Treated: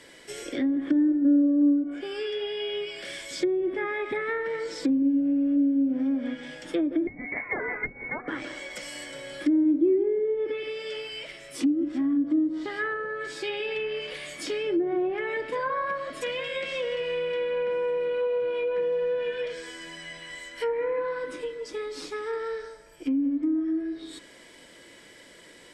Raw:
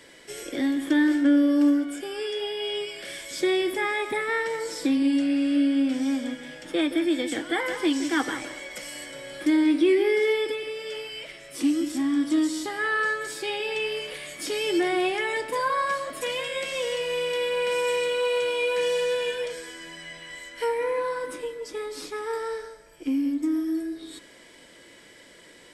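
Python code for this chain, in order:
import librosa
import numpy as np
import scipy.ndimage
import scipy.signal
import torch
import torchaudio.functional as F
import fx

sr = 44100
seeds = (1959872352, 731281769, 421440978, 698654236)

y = fx.freq_invert(x, sr, carrier_hz=2500, at=(7.07, 8.28))
y = fx.dynamic_eq(y, sr, hz=870.0, q=2.4, threshold_db=-46.0, ratio=4.0, max_db=-7)
y = fx.env_lowpass_down(y, sr, base_hz=460.0, full_db=-20.0)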